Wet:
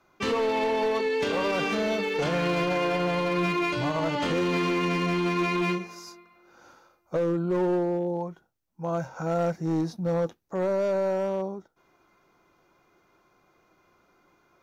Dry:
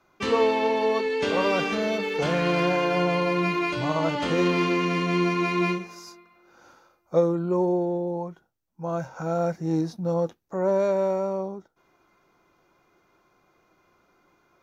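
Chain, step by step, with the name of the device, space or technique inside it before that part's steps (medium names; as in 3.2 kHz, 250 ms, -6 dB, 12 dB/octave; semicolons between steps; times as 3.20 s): limiter into clipper (peak limiter -16.5 dBFS, peak gain reduction 7.5 dB; hard clipper -21 dBFS, distortion -17 dB)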